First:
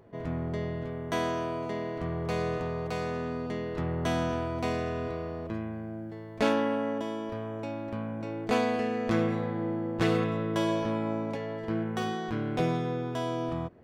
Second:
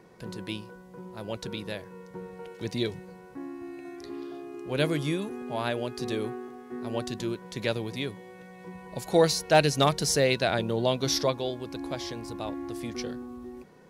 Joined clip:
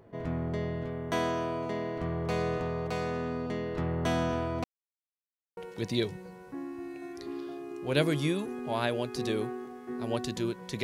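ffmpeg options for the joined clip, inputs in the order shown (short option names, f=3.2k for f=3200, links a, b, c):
-filter_complex "[0:a]apad=whole_dur=10.83,atrim=end=10.83,asplit=2[a][b];[a]atrim=end=4.64,asetpts=PTS-STARTPTS,afade=t=out:st=4.636:d=0.004:c=hsin[c];[b]atrim=start=4.64:end=5.57,asetpts=PTS-STARTPTS,volume=0[d];[1:a]atrim=start=2.4:end=7.66,asetpts=PTS-STARTPTS,afade=t=in:d=0.004:c=hsin[e];[c][d][e]concat=n=3:v=0:a=1"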